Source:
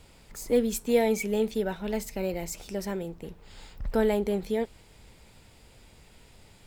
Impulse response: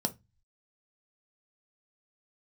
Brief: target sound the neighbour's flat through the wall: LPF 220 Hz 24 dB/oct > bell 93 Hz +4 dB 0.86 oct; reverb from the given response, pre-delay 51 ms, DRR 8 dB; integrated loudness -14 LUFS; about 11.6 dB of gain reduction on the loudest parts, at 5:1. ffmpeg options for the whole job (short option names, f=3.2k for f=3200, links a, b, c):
-filter_complex "[0:a]acompressor=threshold=-31dB:ratio=5,asplit=2[a][b];[1:a]atrim=start_sample=2205,adelay=51[c];[b][c]afir=irnorm=-1:irlink=0,volume=-12.5dB[d];[a][d]amix=inputs=2:normalize=0,lowpass=f=220:w=0.5412,lowpass=f=220:w=1.3066,equalizer=f=93:t=o:w=0.86:g=4,volume=25dB"